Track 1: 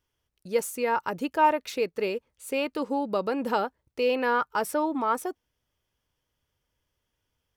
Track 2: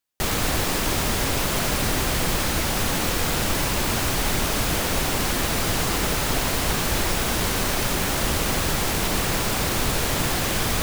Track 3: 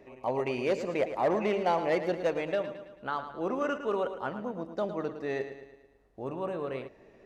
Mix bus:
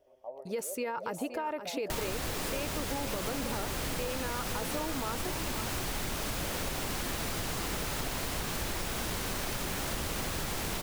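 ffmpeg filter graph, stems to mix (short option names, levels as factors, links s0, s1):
-filter_complex "[0:a]alimiter=limit=0.0944:level=0:latency=1:release=20,volume=0.891,asplit=2[s0][s1];[s1]volume=0.299[s2];[1:a]adelay=1700,volume=0.562[s3];[2:a]acompressor=threshold=0.0355:ratio=2.5,bandpass=f=610:t=q:w=4.7:csg=0,volume=0.531[s4];[s2]aecho=0:1:521:1[s5];[s0][s3][s4][s5]amix=inputs=4:normalize=0,acompressor=threshold=0.0282:ratio=6"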